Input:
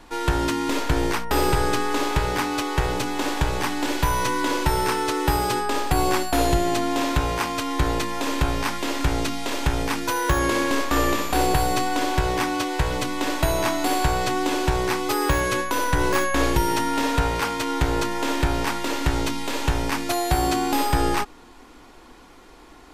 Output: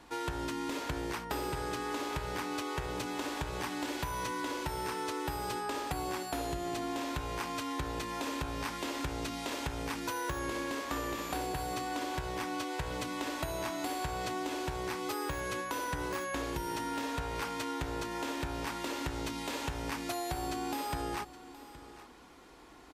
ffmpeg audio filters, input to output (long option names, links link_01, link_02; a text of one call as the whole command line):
ffmpeg -i in.wav -af "highpass=50,acompressor=threshold=-26dB:ratio=6,aecho=1:1:819:0.15,volume=-7dB" out.wav